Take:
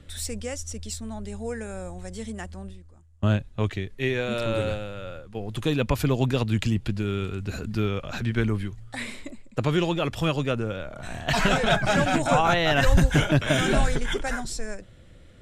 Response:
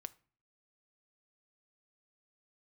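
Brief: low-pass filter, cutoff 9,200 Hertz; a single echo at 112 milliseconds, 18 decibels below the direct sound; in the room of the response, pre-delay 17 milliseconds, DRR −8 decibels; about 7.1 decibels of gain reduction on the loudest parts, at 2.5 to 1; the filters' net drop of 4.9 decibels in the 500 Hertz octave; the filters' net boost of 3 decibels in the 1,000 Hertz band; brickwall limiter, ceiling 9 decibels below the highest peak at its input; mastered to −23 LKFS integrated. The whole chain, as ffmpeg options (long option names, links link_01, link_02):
-filter_complex "[0:a]lowpass=9200,equalizer=frequency=500:width_type=o:gain=-9,equalizer=frequency=1000:width_type=o:gain=7.5,acompressor=threshold=-24dB:ratio=2.5,alimiter=limit=-21dB:level=0:latency=1,aecho=1:1:112:0.126,asplit=2[link_01][link_02];[1:a]atrim=start_sample=2205,adelay=17[link_03];[link_02][link_03]afir=irnorm=-1:irlink=0,volume=12.5dB[link_04];[link_01][link_04]amix=inputs=2:normalize=0,volume=1.5dB"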